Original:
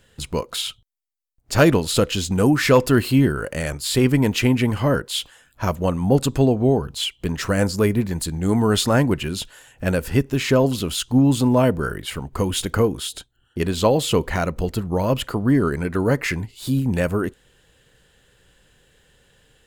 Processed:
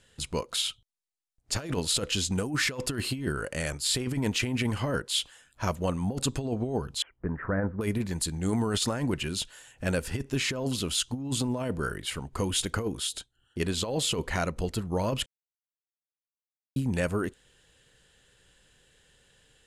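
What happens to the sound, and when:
0:07.02–0:07.81: Butterworth low-pass 1,800 Hz 48 dB per octave
0:15.26–0:16.76: silence
whole clip: low-pass filter 11,000 Hz 24 dB per octave; high-shelf EQ 2,200 Hz +6 dB; compressor whose output falls as the input rises −18 dBFS, ratio −0.5; level −9 dB

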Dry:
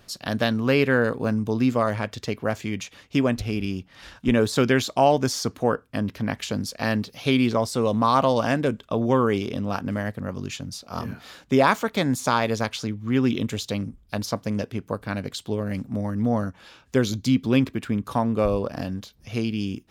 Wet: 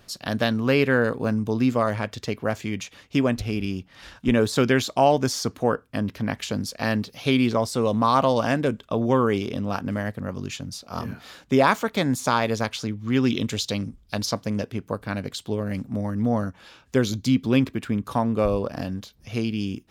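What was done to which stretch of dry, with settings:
0:12.99–0:14.44: parametric band 4,800 Hz +6 dB 1.5 octaves

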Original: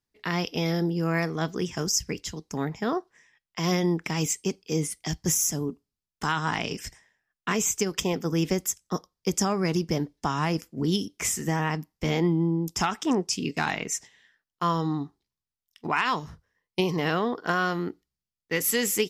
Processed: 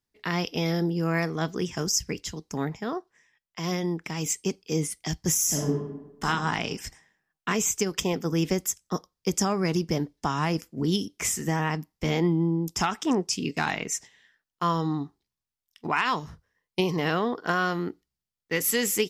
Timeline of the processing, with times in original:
0:02.77–0:04.26: clip gain −4 dB
0:05.45–0:06.25: thrown reverb, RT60 0.98 s, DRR −3.5 dB

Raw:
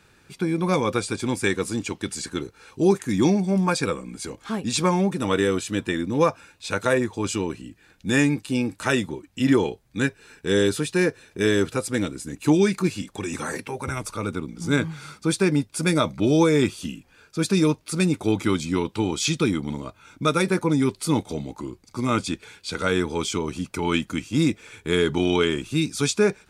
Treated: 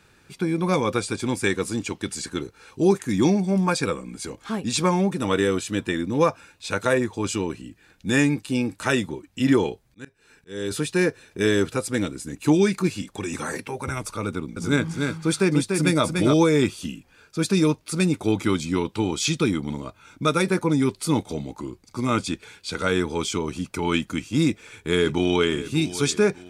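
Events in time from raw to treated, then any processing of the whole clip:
0:09.83–0:10.71: volume swells 538 ms
0:14.27–0:16.34: single-tap delay 292 ms −4.5 dB
0:24.44–0:25.62: delay throw 600 ms, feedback 40%, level −14.5 dB

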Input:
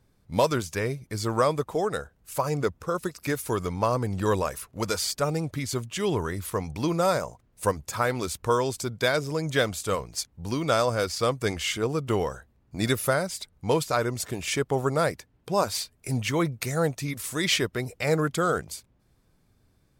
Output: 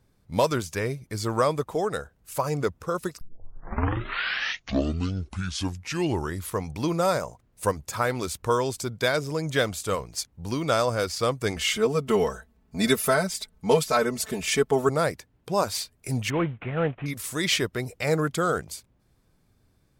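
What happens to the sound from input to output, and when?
0:03.21: tape start 3.29 s
0:11.56–0:14.89: comb filter 4.6 ms, depth 97%
0:16.30–0:17.06: variable-slope delta modulation 16 kbit/s

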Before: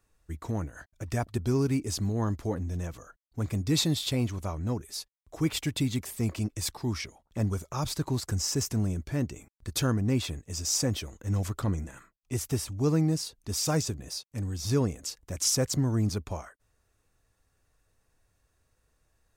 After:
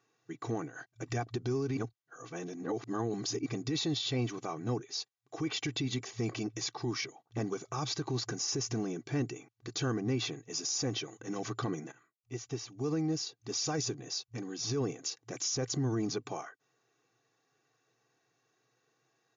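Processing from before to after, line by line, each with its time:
0:01.77–0:03.46: reverse
0:11.92–0:13.84: fade in linear, from −14.5 dB
whole clip: brick-wall band-pass 110–7,200 Hz; comb filter 2.6 ms, depth 62%; brickwall limiter −25 dBFS

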